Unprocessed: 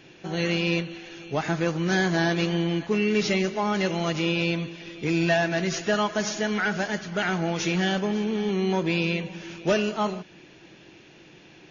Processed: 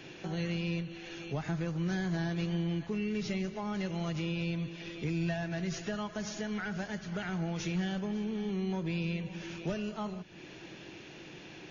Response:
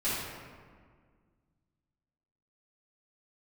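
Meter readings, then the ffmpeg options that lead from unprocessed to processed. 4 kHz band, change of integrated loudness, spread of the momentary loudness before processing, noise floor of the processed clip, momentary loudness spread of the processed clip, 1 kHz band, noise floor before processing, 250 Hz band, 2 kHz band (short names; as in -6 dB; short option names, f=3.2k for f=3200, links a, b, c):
-13.0 dB, -10.0 dB, 7 LU, -50 dBFS, 14 LU, -13.5 dB, -51 dBFS, -8.0 dB, -13.5 dB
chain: -filter_complex "[0:a]acrossover=split=140[a][b];[b]acompressor=threshold=-44dB:ratio=3[c];[a][c]amix=inputs=2:normalize=0,volume=2dB"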